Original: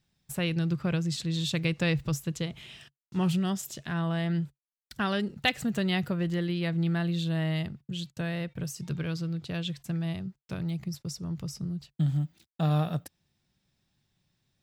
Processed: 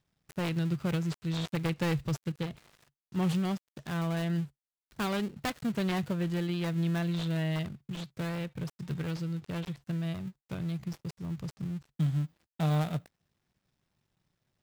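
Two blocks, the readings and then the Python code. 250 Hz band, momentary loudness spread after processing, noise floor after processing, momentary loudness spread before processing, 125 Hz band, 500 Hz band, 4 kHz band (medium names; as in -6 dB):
-2.0 dB, 9 LU, under -85 dBFS, 9 LU, -2.0 dB, -2.0 dB, -6.5 dB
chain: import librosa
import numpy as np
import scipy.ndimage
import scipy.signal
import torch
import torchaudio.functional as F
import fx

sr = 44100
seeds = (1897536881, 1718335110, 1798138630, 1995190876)

y = fx.dead_time(x, sr, dead_ms=0.22)
y = y * 10.0 ** (-2.0 / 20.0)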